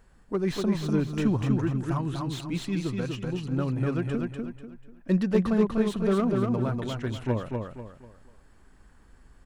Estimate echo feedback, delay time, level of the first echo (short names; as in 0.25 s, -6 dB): 34%, 0.245 s, -3.5 dB